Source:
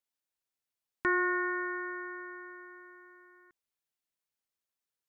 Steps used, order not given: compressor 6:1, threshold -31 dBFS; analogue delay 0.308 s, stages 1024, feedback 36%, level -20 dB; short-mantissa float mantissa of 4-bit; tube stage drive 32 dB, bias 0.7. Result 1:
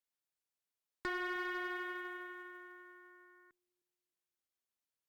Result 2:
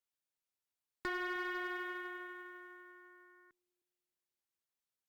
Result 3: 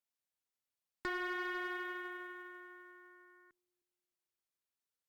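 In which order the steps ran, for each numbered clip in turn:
compressor > short-mantissa float > tube stage > analogue delay; compressor > tube stage > short-mantissa float > analogue delay; analogue delay > short-mantissa float > compressor > tube stage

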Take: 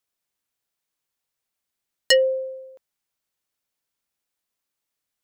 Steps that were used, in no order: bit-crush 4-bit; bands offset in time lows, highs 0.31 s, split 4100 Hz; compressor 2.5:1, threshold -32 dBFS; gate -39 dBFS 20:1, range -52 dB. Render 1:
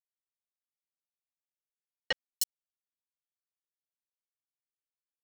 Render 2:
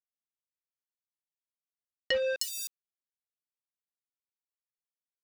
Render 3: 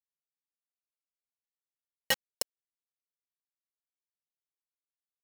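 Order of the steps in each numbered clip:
compressor > bit-crush > bands offset in time > gate; bit-crush > bands offset in time > compressor > gate; gate > bands offset in time > compressor > bit-crush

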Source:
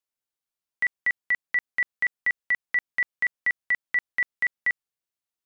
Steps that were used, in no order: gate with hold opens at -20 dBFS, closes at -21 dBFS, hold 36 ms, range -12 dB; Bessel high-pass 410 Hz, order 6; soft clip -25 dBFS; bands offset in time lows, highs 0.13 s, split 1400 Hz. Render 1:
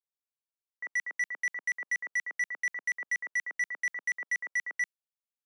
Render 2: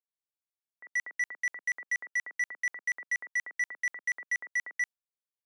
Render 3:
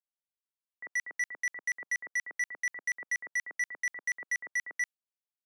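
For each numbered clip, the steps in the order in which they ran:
gate with hold > bands offset in time > soft clip > Bessel high-pass; bands offset in time > gate with hold > Bessel high-pass > soft clip; Bessel high-pass > gate with hold > soft clip > bands offset in time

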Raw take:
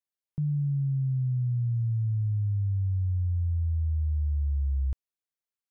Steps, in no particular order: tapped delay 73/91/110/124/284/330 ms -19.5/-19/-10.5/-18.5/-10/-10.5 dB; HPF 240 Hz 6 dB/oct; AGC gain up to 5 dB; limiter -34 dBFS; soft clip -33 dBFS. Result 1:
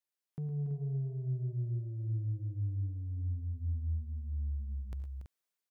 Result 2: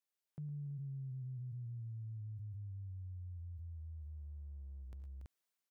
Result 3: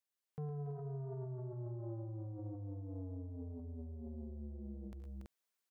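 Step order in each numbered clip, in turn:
HPF > soft clip > AGC > limiter > tapped delay; AGC > tapped delay > limiter > HPF > soft clip; soft clip > tapped delay > AGC > limiter > HPF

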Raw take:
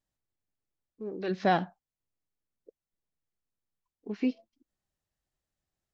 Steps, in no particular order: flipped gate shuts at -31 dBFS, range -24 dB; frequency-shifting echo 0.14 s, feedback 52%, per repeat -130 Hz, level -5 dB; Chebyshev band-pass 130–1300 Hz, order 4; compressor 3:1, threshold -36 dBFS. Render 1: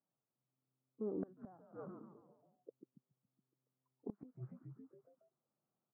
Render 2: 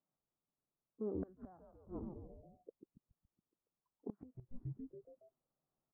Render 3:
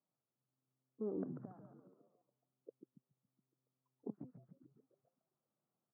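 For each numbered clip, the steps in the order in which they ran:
compressor > frequency-shifting echo > Chebyshev band-pass > flipped gate; Chebyshev band-pass > frequency-shifting echo > compressor > flipped gate; compressor > flipped gate > frequency-shifting echo > Chebyshev band-pass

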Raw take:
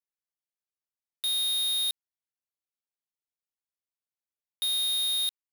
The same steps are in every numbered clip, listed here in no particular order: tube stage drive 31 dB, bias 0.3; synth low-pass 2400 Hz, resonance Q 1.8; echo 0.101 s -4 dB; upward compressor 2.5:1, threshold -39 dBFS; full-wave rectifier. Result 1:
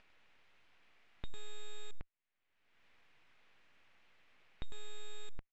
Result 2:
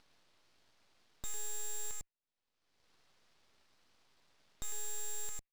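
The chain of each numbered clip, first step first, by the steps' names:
upward compressor > echo > tube stage > full-wave rectifier > synth low-pass; echo > upward compressor > synth low-pass > tube stage > full-wave rectifier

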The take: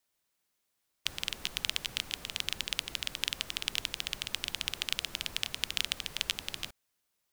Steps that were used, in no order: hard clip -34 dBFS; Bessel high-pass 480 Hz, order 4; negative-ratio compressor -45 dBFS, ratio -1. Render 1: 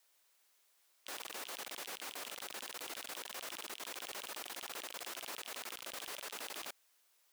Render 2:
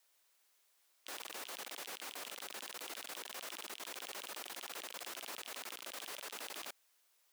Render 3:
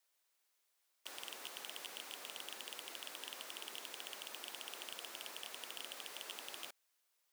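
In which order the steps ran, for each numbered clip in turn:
Bessel high-pass > negative-ratio compressor > hard clip; negative-ratio compressor > Bessel high-pass > hard clip; Bessel high-pass > hard clip > negative-ratio compressor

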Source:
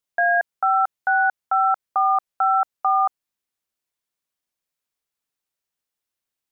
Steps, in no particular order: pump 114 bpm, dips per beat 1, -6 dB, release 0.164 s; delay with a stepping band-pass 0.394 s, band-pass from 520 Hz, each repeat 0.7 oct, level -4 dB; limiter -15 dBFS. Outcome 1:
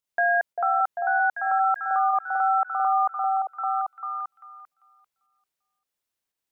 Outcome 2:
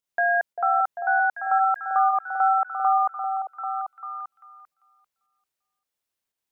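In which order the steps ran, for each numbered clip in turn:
pump > delay with a stepping band-pass > limiter; pump > limiter > delay with a stepping band-pass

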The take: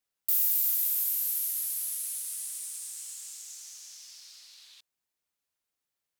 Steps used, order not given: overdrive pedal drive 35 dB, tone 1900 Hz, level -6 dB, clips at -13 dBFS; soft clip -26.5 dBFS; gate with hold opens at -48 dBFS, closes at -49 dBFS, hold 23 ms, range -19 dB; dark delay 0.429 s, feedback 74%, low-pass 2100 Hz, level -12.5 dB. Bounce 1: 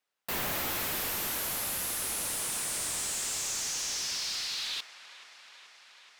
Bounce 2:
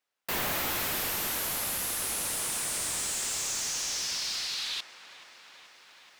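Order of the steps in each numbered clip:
gate with hold > dark delay > overdrive pedal > soft clip; soft clip > dark delay > overdrive pedal > gate with hold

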